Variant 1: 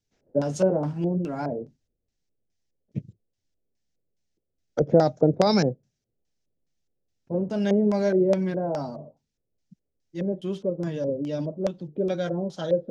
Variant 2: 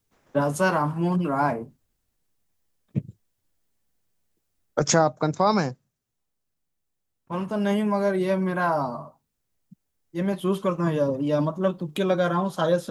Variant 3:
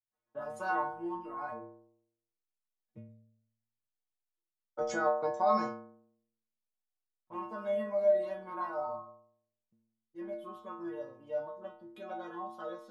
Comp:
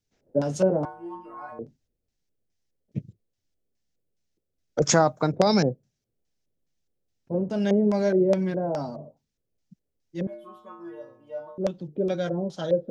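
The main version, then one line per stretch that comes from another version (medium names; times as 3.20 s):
1
0.85–1.59 s: from 3
4.82–5.32 s: from 2
10.27–11.58 s: from 3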